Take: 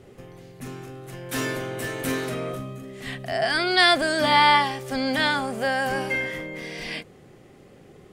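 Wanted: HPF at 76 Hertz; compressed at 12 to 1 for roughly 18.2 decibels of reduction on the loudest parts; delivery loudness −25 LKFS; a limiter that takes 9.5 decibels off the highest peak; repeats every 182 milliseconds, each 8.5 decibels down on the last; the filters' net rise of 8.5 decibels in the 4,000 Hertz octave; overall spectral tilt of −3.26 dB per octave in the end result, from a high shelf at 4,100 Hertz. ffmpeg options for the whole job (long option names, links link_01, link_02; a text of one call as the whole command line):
ffmpeg -i in.wav -af "highpass=76,equalizer=frequency=4000:width_type=o:gain=8,highshelf=frequency=4100:gain=4.5,acompressor=threshold=-26dB:ratio=12,alimiter=limit=-24dB:level=0:latency=1,aecho=1:1:182|364|546|728:0.376|0.143|0.0543|0.0206,volume=7dB" out.wav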